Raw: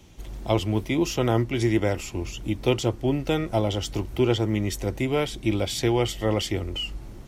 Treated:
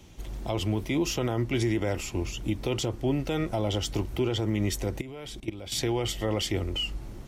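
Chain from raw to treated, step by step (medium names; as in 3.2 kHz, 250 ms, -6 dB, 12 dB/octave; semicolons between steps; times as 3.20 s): 5.01–5.72 s: level held to a coarse grid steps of 20 dB; peak limiter -18 dBFS, peak gain reduction 10 dB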